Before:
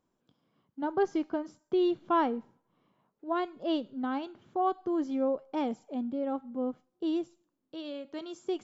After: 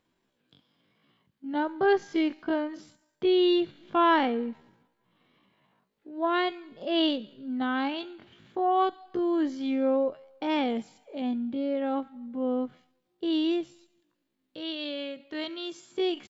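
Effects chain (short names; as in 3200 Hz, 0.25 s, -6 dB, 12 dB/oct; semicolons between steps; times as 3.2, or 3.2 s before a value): band shelf 2700 Hz +9 dB; tempo 0.53×; gain +3 dB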